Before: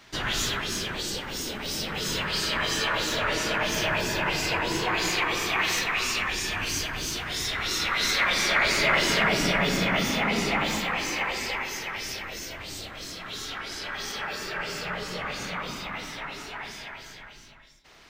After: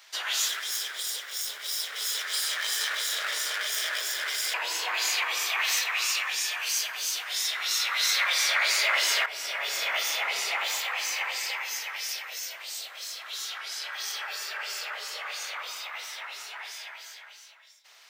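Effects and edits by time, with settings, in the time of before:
0.48–4.54 minimum comb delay 0.57 ms
9.26–9.89 fade in, from -13 dB
whole clip: HPF 520 Hz 24 dB/oct; tilt +3 dB/oct; gain -5 dB

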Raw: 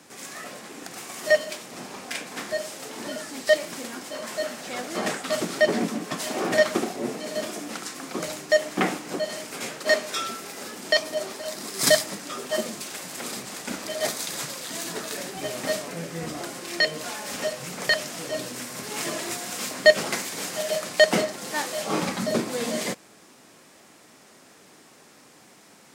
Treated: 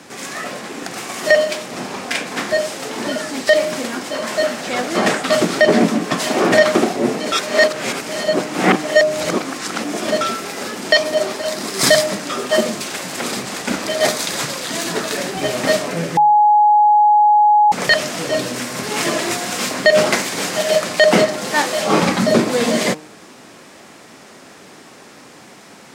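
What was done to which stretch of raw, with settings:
7.32–10.21 reverse
16.17–17.72 bleep 838 Hz -20 dBFS
whole clip: high shelf 7500 Hz -9.5 dB; de-hum 153.8 Hz, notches 8; maximiser +13 dB; gain -1 dB

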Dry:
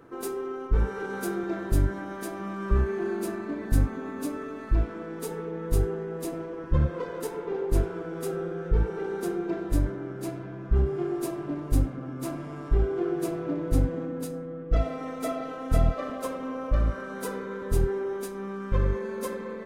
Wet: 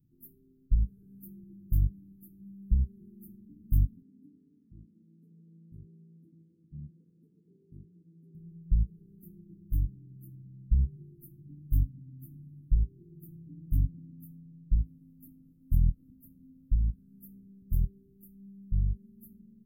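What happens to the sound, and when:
4.02–8.35 BPF 230–2100 Hz
whole clip: inverse Chebyshev band-stop 560–5900 Hz, stop band 60 dB; low shelf 320 Hz -4.5 dB; upward expander 1.5:1, over -35 dBFS; gain +4 dB

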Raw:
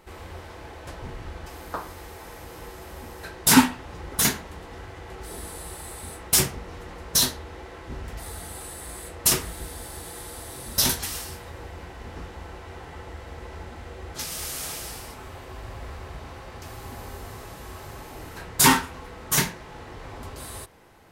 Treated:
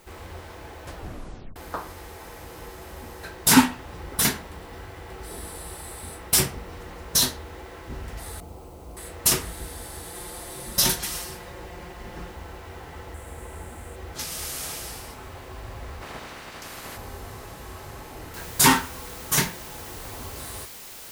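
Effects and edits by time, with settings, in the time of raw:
0.96 tape stop 0.60 s
3.9–6.8 notch 6600 Hz
8.4–8.97 running mean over 25 samples
10.14–12.32 comb 5.6 ms, depth 54%
13.14–13.96 resonant high shelf 6800 Hz +9 dB, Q 3
16.01–16.96 spectral limiter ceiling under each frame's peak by 19 dB
18.34 noise floor step -59 dB -42 dB

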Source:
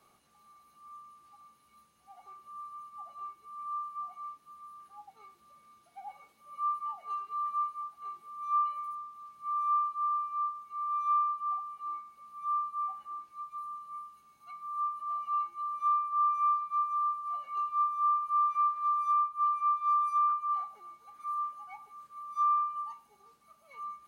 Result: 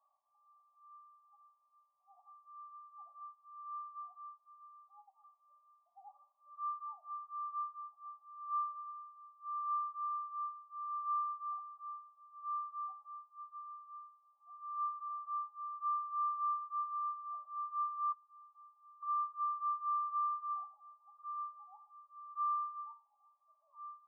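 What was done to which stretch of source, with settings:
14.58–15.08 high shelf 2000 Hz +12 dB
18.12–19.03 double band-pass 1200 Hz, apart 0.96 oct
whole clip: FFT band-pass 560–1200 Hz; differentiator; gain +7.5 dB

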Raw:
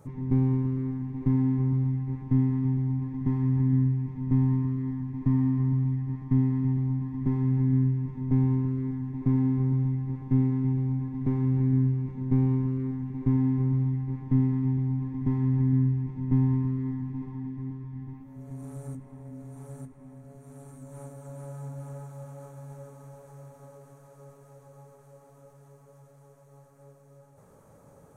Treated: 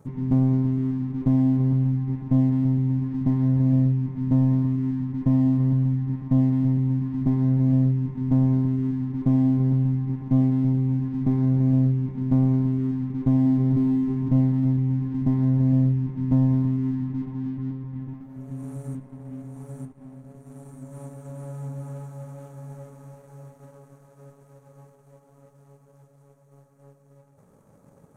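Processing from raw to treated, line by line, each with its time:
12.95–13.78 echo throw 0.5 s, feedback 30%, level -4 dB
whole clip: bell 210 Hz +7 dB 1.4 oct; sample leveller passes 1; gain -3 dB

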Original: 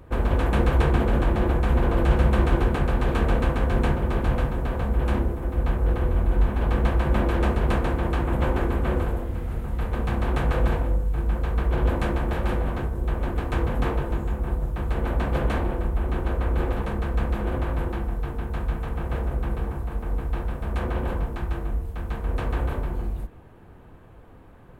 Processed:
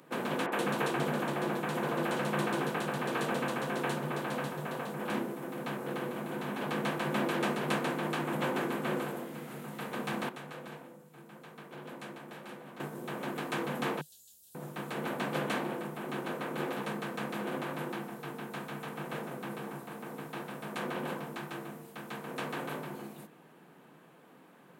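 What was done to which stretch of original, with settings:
0.46–5.1 three bands offset in time mids, highs, lows 60/130 ms, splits 240/3000 Hz
10.29–12.8 gain -12 dB
14.01–14.55 inverse Chebyshev band-stop 140–2300 Hz
whole clip: Chebyshev high-pass 150 Hz, order 5; high shelf 2200 Hz +9.5 dB; gain -5.5 dB

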